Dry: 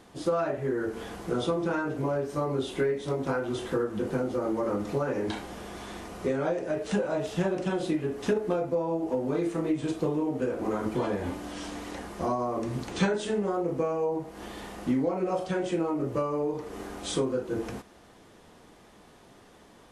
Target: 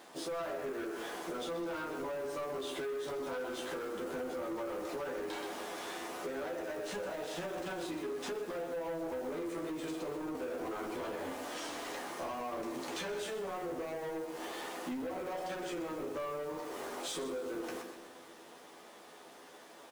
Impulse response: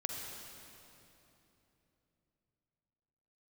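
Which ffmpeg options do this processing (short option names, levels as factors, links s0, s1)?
-filter_complex "[0:a]highpass=350,bandreject=f=60:t=h:w=6,bandreject=f=120:t=h:w=6,bandreject=f=180:t=h:w=6,bandreject=f=240:t=h:w=6,bandreject=f=300:t=h:w=6,bandreject=f=360:t=h:w=6,bandreject=f=420:t=h:w=6,bandreject=f=480:t=h:w=6,aecho=1:1:126|252|378|504:0.299|0.11|0.0409|0.0151,acrusher=bits=3:mode=log:mix=0:aa=0.000001,alimiter=limit=0.0631:level=0:latency=1,flanger=delay=8.6:depth=5.9:regen=90:speed=0.16:shape=triangular,asoftclip=type=tanh:threshold=0.0112,asplit=2[s0][s1];[s1]adelay=12,volume=0.562[s2];[s0][s2]amix=inputs=2:normalize=0,asplit=2[s3][s4];[1:a]atrim=start_sample=2205[s5];[s4][s5]afir=irnorm=-1:irlink=0,volume=0.168[s6];[s3][s6]amix=inputs=2:normalize=0,acompressor=threshold=0.01:ratio=6,volume=1.58"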